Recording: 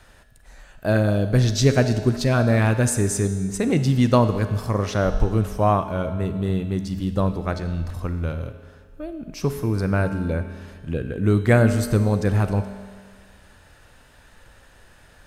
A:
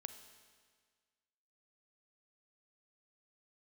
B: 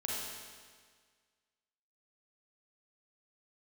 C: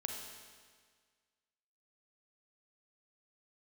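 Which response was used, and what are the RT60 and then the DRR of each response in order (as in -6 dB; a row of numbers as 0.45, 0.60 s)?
A; 1.7, 1.7, 1.7 s; 9.0, -4.5, 1.5 dB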